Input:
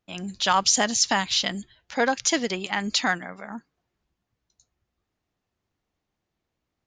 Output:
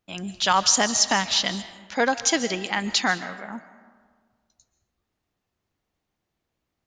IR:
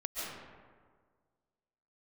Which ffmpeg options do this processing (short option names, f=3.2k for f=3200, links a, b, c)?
-filter_complex "[0:a]asplit=2[a][b];[b]lowshelf=f=390:g=-8[c];[1:a]atrim=start_sample=2205,highshelf=f=7.7k:g=9.5[d];[c][d]afir=irnorm=-1:irlink=0,volume=-14dB[e];[a][e]amix=inputs=2:normalize=0"